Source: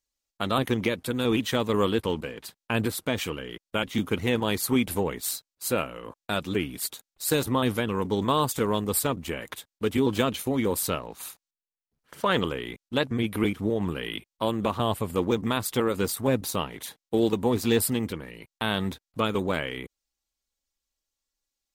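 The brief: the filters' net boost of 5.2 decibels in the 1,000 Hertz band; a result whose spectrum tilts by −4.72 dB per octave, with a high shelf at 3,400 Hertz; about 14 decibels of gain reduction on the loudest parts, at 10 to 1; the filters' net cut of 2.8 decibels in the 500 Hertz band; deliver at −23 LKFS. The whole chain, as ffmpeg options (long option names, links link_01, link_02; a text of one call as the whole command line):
ffmpeg -i in.wav -af "equalizer=frequency=500:width_type=o:gain=-5,equalizer=frequency=1000:width_type=o:gain=8,highshelf=frequency=3400:gain=-7,acompressor=threshold=-31dB:ratio=10,volume=14dB" out.wav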